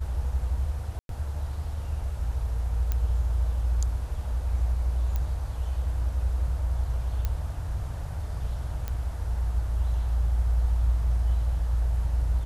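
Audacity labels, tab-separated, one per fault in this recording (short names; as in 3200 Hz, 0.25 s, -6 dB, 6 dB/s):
0.990000	1.090000	gap 0.102 s
2.920000	2.920000	pop -15 dBFS
5.160000	5.160000	pop -17 dBFS
7.250000	7.250000	pop -15 dBFS
8.880000	8.880000	pop -18 dBFS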